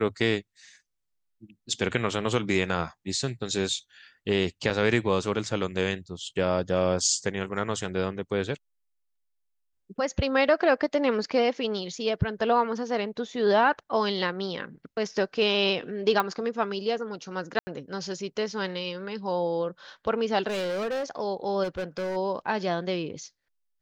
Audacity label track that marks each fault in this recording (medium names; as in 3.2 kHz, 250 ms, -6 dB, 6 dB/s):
4.700000	4.710000	dropout 7 ms
16.200000	16.200000	pop -12 dBFS
17.590000	17.670000	dropout 80 ms
20.470000	21.040000	clipped -27 dBFS
21.630000	22.170000	clipped -27.5 dBFS